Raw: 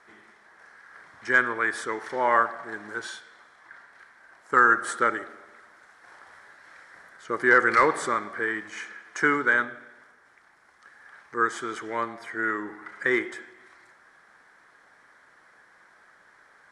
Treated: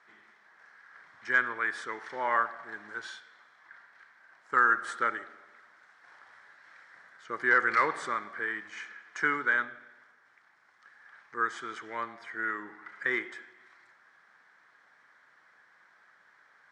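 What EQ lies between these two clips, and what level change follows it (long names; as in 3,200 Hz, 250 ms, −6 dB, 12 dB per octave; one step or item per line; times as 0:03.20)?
high-pass filter 140 Hz 12 dB per octave
high-frequency loss of the air 95 metres
parametric band 360 Hz −8.5 dB 2.7 octaves
−2.0 dB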